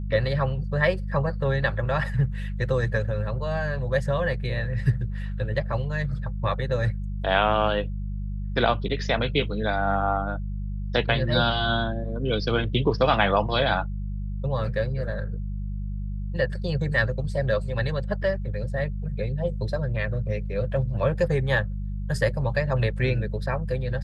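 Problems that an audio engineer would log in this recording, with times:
hum 50 Hz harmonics 4 -30 dBFS

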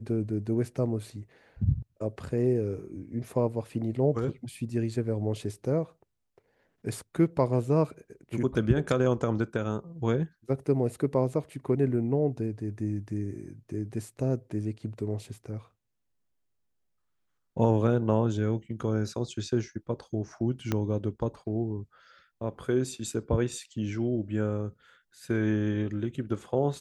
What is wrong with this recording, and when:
20.72 s: pop -14 dBFS

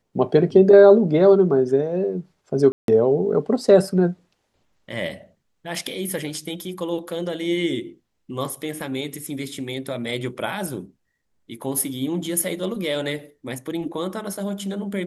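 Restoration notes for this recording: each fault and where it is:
2.72–2.88 s: dropout 162 ms

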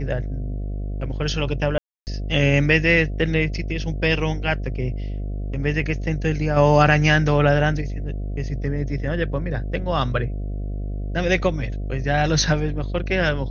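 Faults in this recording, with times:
buzz 50 Hz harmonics 14 -27 dBFS
1.78–2.07 s: dropout 289 ms

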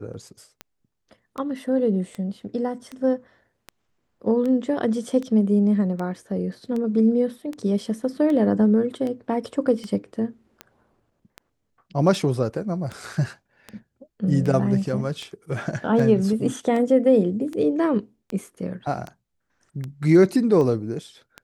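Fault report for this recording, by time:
tick 78 rpm -19 dBFS

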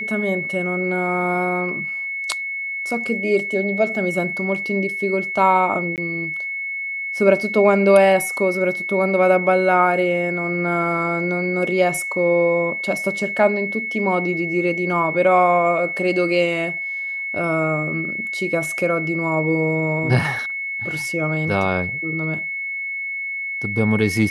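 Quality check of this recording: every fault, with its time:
whine 2.2 kHz -24 dBFS
5.96–5.98 s: dropout 18 ms

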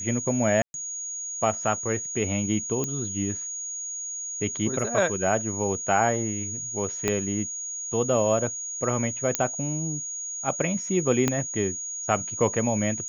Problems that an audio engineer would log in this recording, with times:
whine 6.7 kHz -31 dBFS
0.62–0.74 s: dropout 121 ms
2.84 s: pop -14 dBFS
7.08 s: pop -9 dBFS
9.35 s: pop -5 dBFS
11.28 s: pop -8 dBFS

